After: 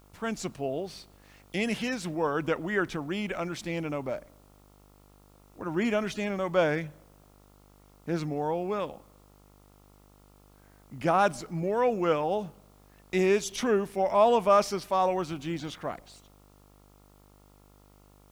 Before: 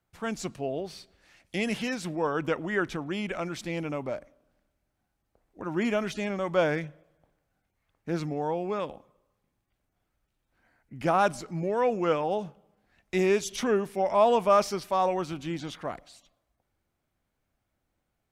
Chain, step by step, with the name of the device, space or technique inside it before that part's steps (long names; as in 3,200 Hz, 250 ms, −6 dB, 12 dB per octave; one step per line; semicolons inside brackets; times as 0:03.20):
video cassette with head-switching buzz (hum with harmonics 50 Hz, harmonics 28, −58 dBFS −4 dB per octave; white noise bed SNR 37 dB)